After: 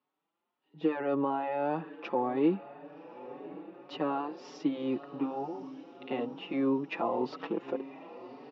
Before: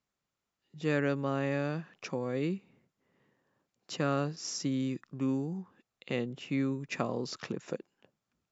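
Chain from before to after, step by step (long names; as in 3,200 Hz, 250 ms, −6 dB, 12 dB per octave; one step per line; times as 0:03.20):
dynamic equaliser 760 Hz, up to +8 dB, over −48 dBFS, Q 1.1
brickwall limiter −24.5 dBFS, peak gain reduction 11 dB
loudspeaker in its box 300–3,000 Hz, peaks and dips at 310 Hz +6 dB, 600 Hz −3 dB, 870 Hz +6 dB, 1,600 Hz −6 dB, 2,200 Hz −7 dB
feedback delay with all-pass diffusion 1,084 ms, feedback 54%, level −15.5 dB
barber-pole flanger 5.1 ms +1.8 Hz
level +8 dB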